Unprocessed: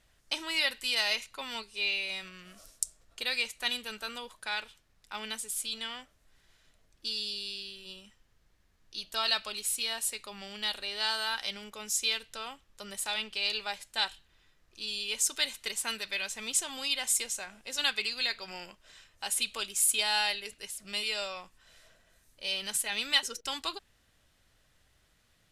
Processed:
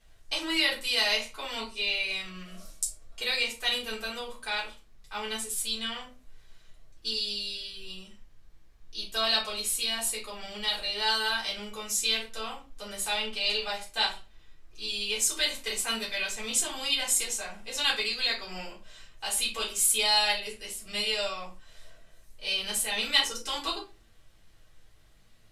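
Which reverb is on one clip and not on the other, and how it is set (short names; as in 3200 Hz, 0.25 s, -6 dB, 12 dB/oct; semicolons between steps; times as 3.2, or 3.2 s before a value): shoebox room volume 140 m³, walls furnished, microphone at 3.8 m; gain -4.5 dB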